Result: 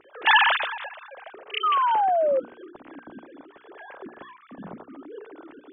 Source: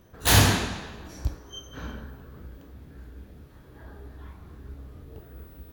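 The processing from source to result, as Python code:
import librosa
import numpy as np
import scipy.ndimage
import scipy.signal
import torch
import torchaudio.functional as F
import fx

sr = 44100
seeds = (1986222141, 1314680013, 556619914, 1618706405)

y = fx.sine_speech(x, sr)
y = fx.spec_paint(y, sr, seeds[0], shape='fall', start_s=1.63, length_s=0.77, low_hz=510.0, high_hz=1300.0, level_db=-21.0)
y = fx.hum_notches(y, sr, base_hz=60, count=8)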